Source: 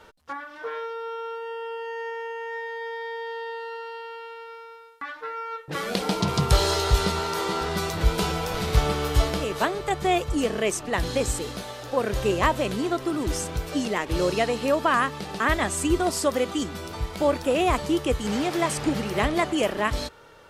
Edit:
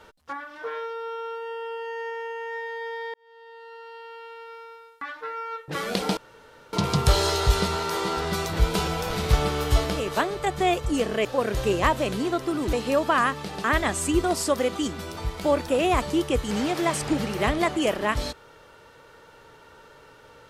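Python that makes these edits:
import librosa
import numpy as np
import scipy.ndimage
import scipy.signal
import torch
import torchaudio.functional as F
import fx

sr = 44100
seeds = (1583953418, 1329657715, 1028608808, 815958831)

y = fx.edit(x, sr, fx.fade_in_span(start_s=3.14, length_s=1.49),
    fx.insert_room_tone(at_s=6.17, length_s=0.56),
    fx.cut(start_s=10.69, length_s=1.15),
    fx.cut(start_s=13.32, length_s=1.17), tone=tone)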